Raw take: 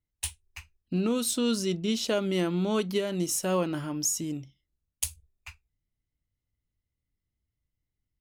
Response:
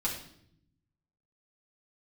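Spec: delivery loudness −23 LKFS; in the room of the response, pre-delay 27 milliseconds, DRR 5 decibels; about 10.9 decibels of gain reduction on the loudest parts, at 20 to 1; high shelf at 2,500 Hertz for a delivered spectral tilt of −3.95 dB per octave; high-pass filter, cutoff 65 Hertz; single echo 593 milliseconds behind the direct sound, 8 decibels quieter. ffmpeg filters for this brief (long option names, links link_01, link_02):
-filter_complex "[0:a]highpass=65,highshelf=frequency=2500:gain=5.5,acompressor=threshold=-30dB:ratio=20,aecho=1:1:593:0.398,asplit=2[link_01][link_02];[1:a]atrim=start_sample=2205,adelay=27[link_03];[link_02][link_03]afir=irnorm=-1:irlink=0,volume=-10dB[link_04];[link_01][link_04]amix=inputs=2:normalize=0,volume=9.5dB"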